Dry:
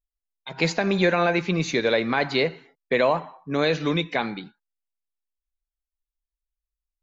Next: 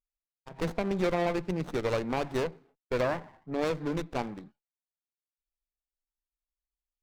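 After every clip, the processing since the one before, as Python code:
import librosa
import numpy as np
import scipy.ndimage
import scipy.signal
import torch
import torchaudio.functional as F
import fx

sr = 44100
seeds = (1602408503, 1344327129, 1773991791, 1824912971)

y = fx.wiener(x, sr, points=15)
y = fx.running_max(y, sr, window=17)
y = F.gain(torch.from_numpy(y), -7.0).numpy()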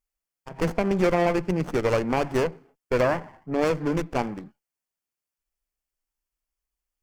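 y = fx.peak_eq(x, sr, hz=3800.0, db=-11.5, octaves=0.22)
y = F.gain(torch.from_numpy(y), 6.5).numpy()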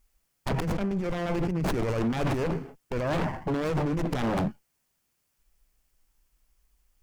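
y = fx.bass_treble(x, sr, bass_db=8, treble_db=0)
y = fx.over_compress(y, sr, threshold_db=-30.0, ratio=-1.0)
y = 10.0 ** (-27.0 / 20.0) * (np.abs((y / 10.0 ** (-27.0 / 20.0) + 3.0) % 4.0 - 2.0) - 1.0)
y = F.gain(torch.from_numpy(y), 5.5).numpy()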